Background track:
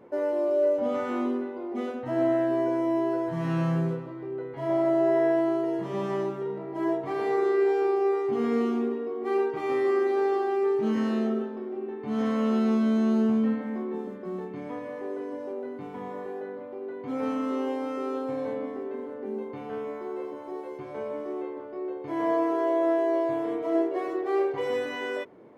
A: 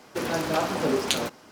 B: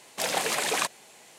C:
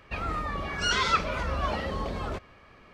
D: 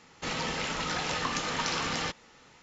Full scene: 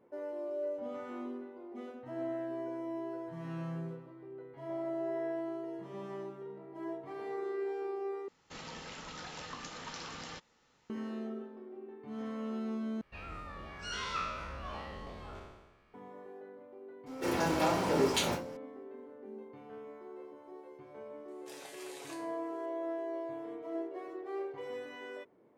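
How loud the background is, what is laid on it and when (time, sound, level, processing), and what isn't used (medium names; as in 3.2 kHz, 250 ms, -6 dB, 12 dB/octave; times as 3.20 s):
background track -13.5 dB
8.28 s: replace with D -13 dB + peaking EQ 2.3 kHz -2.5 dB 0.64 oct
13.01 s: replace with C -16.5 dB + spectral sustain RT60 1.20 s
17.06 s: add A -14 dB + simulated room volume 120 m³, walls furnished, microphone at 4.4 m
21.28 s: add B -10 dB + feedback comb 140 Hz, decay 0.55 s, mix 90%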